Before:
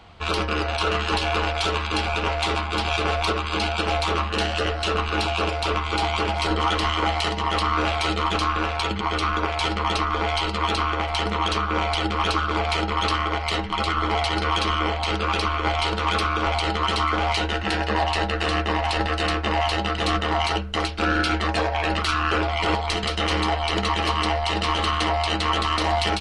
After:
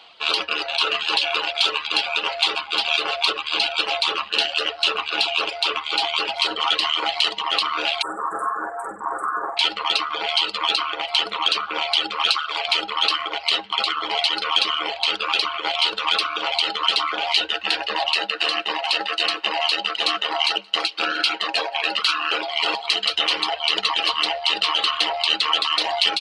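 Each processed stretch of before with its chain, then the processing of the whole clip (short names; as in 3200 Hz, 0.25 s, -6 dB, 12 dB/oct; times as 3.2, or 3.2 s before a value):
8.02–9.57 Chebyshev band-stop 1700–7600 Hz, order 5 + flutter echo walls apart 8.1 m, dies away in 0.64 s
12.28–12.68 HPF 600 Hz + high shelf 4400 Hz +4 dB
18.14–23.14 HPF 130 Hz 24 dB/oct + notch 3500 Hz, Q 18 + echo 0.175 s -17.5 dB
whole clip: HPF 510 Hz 12 dB/oct; reverb removal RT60 0.86 s; band shelf 3500 Hz +9.5 dB 1.1 oct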